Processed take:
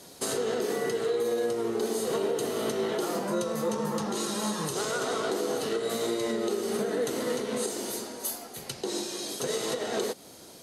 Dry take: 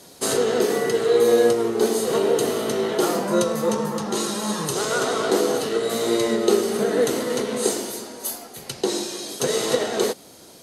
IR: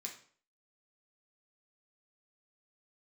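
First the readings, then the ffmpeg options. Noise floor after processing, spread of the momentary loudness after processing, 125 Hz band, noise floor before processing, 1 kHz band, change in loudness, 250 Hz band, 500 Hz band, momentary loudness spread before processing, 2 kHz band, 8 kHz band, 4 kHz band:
-49 dBFS, 5 LU, -6.5 dB, -47 dBFS, -7.0 dB, -8.0 dB, -7.5 dB, -8.5 dB, 8 LU, -7.5 dB, -7.0 dB, -7.0 dB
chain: -af "alimiter=limit=0.133:level=0:latency=1:release=254,volume=0.75"

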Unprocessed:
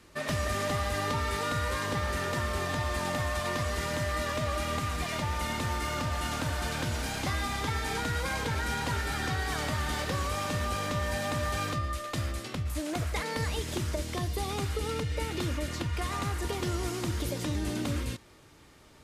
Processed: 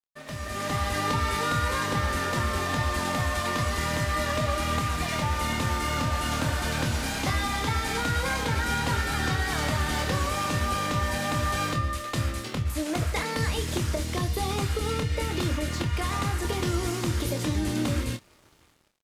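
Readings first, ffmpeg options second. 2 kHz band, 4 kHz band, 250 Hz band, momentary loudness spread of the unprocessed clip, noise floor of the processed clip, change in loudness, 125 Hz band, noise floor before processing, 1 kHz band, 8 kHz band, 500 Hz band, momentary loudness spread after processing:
+4.0 dB, +4.5 dB, +5.0 dB, 3 LU, -58 dBFS, +4.0 dB, +4.5 dB, -55 dBFS, +4.5 dB, +4.0 dB, +2.5 dB, 3 LU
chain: -filter_complex "[0:a]dynaudnorm=f=240:g=5:m=3.98,aeval=exprs='sgn(val(0))*max(abs(val(0))-0.00501,0)':c=same,asplit=2[s0][s1];[s1]adelay=26,volume=0.422[s2];[s0][s2]amix=inputs=2:normalize=0,volume=0.398"

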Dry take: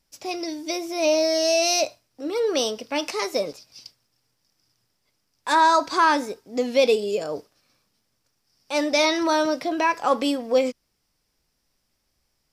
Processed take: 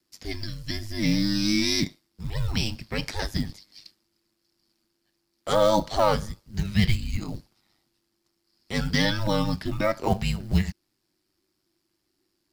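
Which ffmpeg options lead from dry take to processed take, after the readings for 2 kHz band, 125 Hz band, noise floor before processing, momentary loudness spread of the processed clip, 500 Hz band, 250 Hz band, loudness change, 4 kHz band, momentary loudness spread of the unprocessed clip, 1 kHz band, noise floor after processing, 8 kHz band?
-5.0 dB, no reading, -73 dBFS, 13 LU, -6.5 dB, +0.5 dB, -3.5 dB, -2.5 dB, 11 LU, -8.5 dB, -76 dBFS, -7.5 dB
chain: -af "aeval=exprs='val(0)*sin(2*PI*50*n/s)':c=same,afreqshift=-390,acrusher=bits=7:mode=log:mix=0:aa=0.000001"

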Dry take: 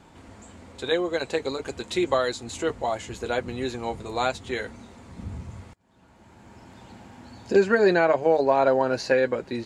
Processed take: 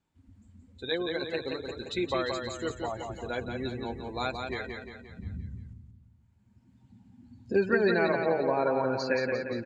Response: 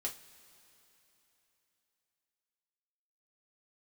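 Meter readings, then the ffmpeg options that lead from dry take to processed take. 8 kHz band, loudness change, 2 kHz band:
-9.5 dB, -6.0 dB, -4.0 dB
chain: -af "afftdn=nr=23:nf=-34,equalizer=f=670:w=0.57:g=-7,aecho=1:1:175|350|525|700|875|1050:0.562|0.276|0.135|0.0662|0.0324|0.0159,volume=0.794"

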